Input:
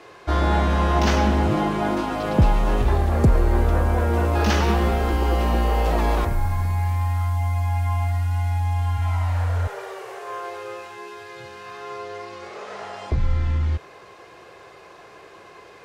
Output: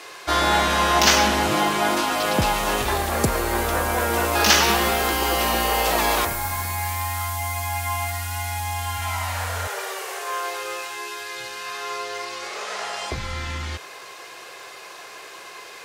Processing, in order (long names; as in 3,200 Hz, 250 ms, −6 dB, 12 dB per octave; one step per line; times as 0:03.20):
spectral tilt +4 dB per octave
level +4.5 dB